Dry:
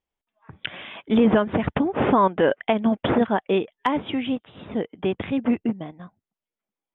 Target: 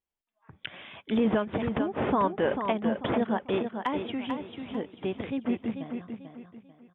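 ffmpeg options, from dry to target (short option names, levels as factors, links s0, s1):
-af "aecho=1:1:442|884|1326|1768:0.447|0.147|0.0486|0.0161,volume=0.422"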